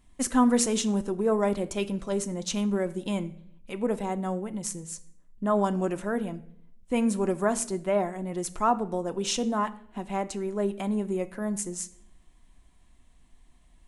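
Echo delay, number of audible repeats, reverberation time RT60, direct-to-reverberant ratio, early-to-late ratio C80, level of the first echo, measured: no echo audible, no echo audible, 0.65 s, 9.0 dB, 20.5 dB, no echo audible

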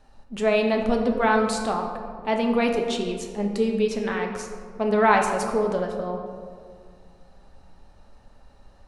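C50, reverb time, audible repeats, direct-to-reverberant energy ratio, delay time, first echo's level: 5.0 dB, 2.1 s, no echo audible, 2.0 dB, no echo audible, no echo audible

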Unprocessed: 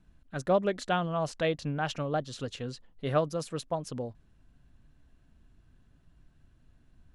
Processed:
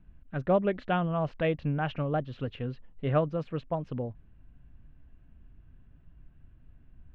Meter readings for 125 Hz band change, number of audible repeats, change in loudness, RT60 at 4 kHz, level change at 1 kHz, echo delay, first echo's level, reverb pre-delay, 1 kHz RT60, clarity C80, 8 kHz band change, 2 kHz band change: +4.0 dB, no echo audible, +1.0 dB, no reverb audible, −0.5 dB, no echo audible, no echo audible, no reverb audible, no reverb audible, no reverb audible, below −25 dB, −0.5 dB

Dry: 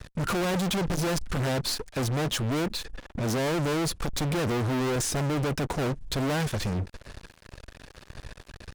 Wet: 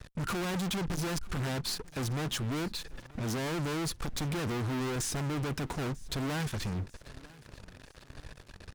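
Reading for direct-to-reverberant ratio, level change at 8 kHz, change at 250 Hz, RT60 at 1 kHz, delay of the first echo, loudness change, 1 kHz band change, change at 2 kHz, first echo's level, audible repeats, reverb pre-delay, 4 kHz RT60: no reverb audible, −5.0 dB, −5.5 dB, no reverb audible, 943 ms, −6.0 dB, −6.5 dB, −5.0 dB, −22.5 dB, 3, no reverb audible, no reverb audible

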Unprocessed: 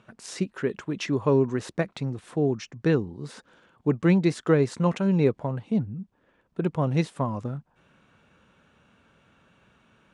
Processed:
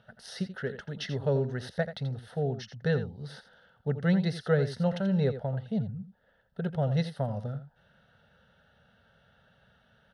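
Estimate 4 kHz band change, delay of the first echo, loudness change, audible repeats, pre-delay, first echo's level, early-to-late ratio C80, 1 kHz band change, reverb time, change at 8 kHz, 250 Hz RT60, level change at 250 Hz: −1.0 dB, 84 ms, −5.0 dB, 1, no reverb audible, −11.5 dB, no reverb audible, −7.0 dB, no reverb audible, can't be measured, no reverb audible, −6.5 dB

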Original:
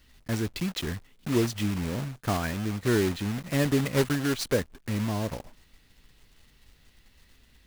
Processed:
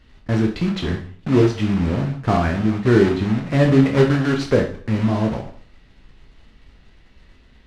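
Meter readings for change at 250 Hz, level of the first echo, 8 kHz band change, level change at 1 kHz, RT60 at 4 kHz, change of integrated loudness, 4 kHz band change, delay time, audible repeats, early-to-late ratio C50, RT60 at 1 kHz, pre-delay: +10.5 dB, no echo audible, can't be measured, +9.5 dB, 0.45 s, +9.5 dB, +2.5 dB, no echo audible, no echo audible, 8.0 dB, 0.45 s, 13 ms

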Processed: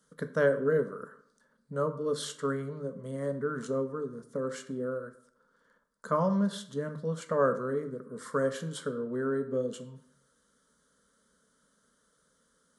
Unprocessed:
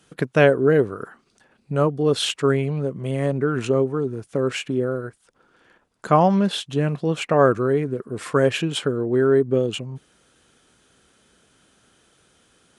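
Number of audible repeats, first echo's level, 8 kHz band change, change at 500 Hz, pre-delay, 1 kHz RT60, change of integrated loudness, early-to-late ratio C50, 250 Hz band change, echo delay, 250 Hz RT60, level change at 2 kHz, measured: no echo audible, no echo audible, −9.5 dB, −10.5 dB, 12 ms, 0.65 s, −11.0 dB, 13.0 dB, −11.0 dB, no echo audible, 0.70 s, −11.0 dB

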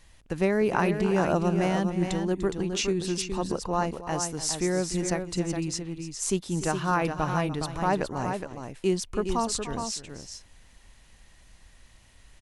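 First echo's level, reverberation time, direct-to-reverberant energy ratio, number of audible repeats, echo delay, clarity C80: −13.5 dB, no reverb audible, no reverb audible, 2, 296 ms, no reverb audible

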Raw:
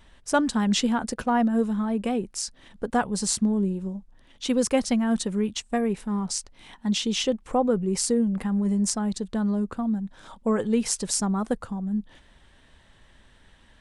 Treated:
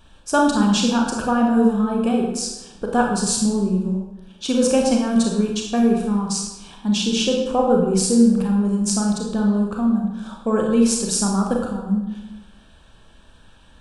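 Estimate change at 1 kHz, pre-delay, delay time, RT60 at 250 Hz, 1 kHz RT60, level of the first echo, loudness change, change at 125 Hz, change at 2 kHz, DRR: +5.5 dB, 28 ms, no echo audible, 1.0 s, 0.95 s, no echo audible, +6.0 dB, +6.0 dB, +4.5 dB, 0.0 dB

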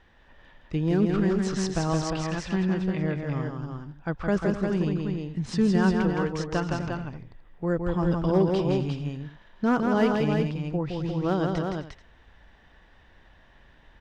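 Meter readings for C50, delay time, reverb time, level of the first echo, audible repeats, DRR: no reverb audible, 165 ms, no reverb audible, −4.0 dB, 4, no reverb audible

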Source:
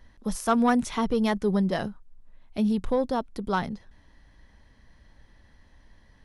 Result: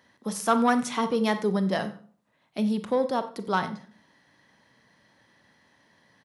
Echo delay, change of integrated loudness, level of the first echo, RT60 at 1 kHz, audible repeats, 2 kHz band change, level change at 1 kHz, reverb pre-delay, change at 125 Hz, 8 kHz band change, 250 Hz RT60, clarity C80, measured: 92 ms, 0.0 dB, −20.0 dB, 0.45 s, 2, +2.0 dB, +1.5 dB, 31 ms, −1.5 dB, can't be measured, 0.50 s, 16.5 dB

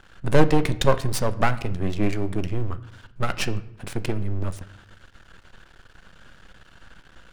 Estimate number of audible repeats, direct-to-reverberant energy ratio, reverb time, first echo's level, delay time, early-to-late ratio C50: no echo audible, 11.5 dB, 0.75 s, no echo audible, no echo audible, 16.5 dB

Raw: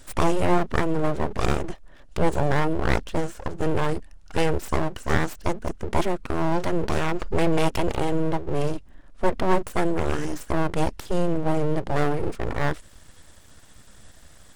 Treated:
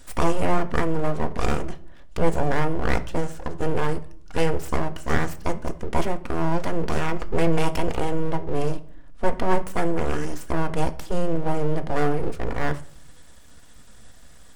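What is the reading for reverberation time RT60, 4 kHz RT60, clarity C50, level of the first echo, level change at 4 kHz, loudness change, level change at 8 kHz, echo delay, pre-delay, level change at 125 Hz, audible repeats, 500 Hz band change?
0.55 s, 0.40 s, 17.0 dB, no echo audible, −1.5 dB, −0.5 dB, −0.5 dB, no echo audible, 4 ms, −0.5 dB, no echo audible, −0.5 dB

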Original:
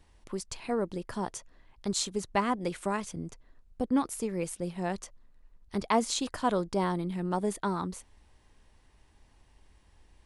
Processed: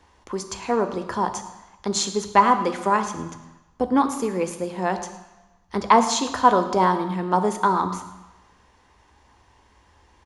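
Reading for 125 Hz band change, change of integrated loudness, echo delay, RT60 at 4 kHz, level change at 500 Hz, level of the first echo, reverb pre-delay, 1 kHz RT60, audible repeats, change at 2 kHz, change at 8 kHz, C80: +4.5 dB, +10.0 dB, 109 ms, 1.1 s, +8.5 dB, −18.0 dB, 3 ms, 1.1 s, 1, +10.0 dB, +7.0 dB, 11.5 dB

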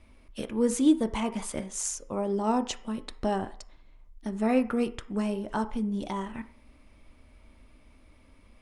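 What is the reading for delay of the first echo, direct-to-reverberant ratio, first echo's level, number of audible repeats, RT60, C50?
no echo audible, 8.0 dB, no echo audible, no echo audible, 0.45 s, 15.5 dB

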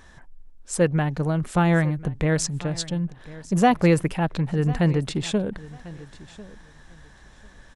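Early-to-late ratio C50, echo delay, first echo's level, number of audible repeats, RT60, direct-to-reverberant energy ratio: no reverb audible, 1,046 ms, −19.0 dB, 2, no reverb audible, no reverb audible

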